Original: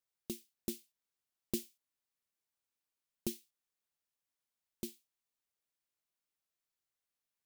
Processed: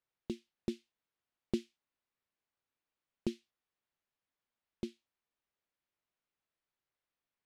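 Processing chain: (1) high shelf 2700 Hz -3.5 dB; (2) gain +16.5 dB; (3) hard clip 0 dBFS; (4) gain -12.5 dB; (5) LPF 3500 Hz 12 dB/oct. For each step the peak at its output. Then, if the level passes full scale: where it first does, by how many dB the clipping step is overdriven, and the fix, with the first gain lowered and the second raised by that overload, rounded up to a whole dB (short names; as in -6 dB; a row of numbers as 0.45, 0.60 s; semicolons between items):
-20.5, -4.0, -4.0, -16.5, -18.5 dBFS; no overload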